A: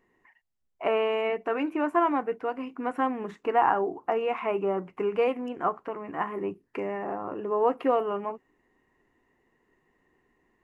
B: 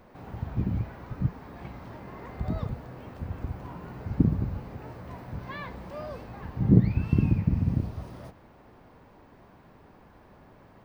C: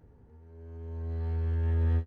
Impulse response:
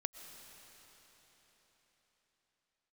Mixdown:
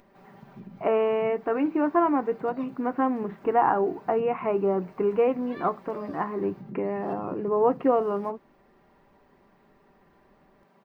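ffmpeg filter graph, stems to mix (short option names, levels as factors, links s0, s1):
-filter_complex "[0:a]lowpass=2700,aemphasis=mode=reproduction:type=riaa,volume=1.06[s0];[1:a]highpass=f=120:w=0.5412,highpass=f=120:w=1.3066,aecho=1:1:5.1:0.82,acompressor=threshold=0.0355:ratio=4,volume=0.376[s1];[s0][s1]amix=inputs=2:normalize=0,lowshelf=f=130:g=-10,acompressor=mode=upward:threshold=0.00141:ratio=2.5"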